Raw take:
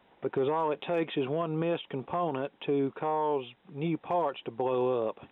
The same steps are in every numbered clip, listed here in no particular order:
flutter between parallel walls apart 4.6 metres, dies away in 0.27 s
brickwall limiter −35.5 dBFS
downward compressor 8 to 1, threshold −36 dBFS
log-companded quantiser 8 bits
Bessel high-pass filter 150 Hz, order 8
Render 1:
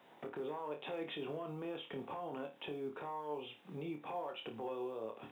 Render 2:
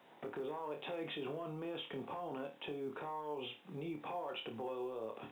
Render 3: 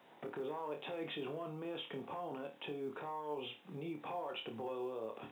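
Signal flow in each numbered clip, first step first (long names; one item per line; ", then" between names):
Bessel high-pass filter, then log-companded quantiser, then downward compressor, then brickwall limiter, then flutter between parallel walls
Bessel high-pass filter, then brickwall limiter, then flutter between parallel walls, then downward compressor, then log-companded quantiser
brickwall limiter, then Bessel high-pass filter, then downward compressor, then flutter between parallel walls, then log-companded quantiser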